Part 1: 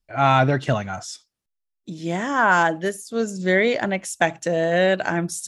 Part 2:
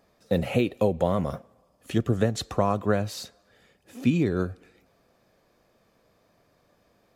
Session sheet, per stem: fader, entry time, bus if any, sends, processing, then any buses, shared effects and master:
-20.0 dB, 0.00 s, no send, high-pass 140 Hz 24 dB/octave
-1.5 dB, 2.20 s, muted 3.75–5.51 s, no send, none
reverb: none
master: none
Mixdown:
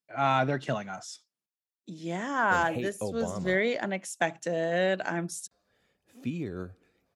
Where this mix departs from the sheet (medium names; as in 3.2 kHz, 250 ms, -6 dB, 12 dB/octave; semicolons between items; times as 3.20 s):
stem 1 -20.0 dB -> -8.0 dB; stem 2 -1.5 dB -> -11.0 dB